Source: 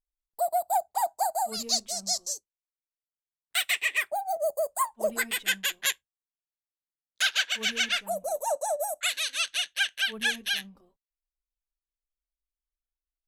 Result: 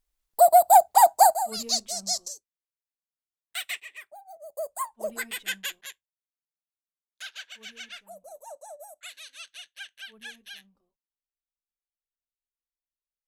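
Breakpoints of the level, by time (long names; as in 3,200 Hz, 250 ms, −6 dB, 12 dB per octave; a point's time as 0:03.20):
+11 dB
from 0:01.34 +0.5 dB
from 0:02.28 −6.5 dB
from 0:03.80 −16.5 dB
from 0:04.57 −4.5 dB
from 0:05.81 −15 dB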